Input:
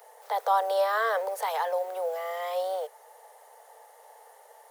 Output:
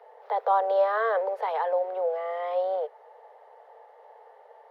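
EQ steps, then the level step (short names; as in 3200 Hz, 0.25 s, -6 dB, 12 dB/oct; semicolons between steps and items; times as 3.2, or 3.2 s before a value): air absorption 360 m; low shelf 440 Hz +11 dB; 0.0 dB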